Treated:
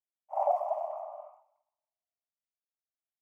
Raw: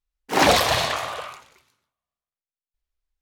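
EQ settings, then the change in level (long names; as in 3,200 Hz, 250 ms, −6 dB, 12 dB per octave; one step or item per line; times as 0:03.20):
linear-phase brick-wall high-pass 570 Hz
inverse Chebyshev low-pass filter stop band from 1,500 Hz, stop band 40 dB
−4.0 dB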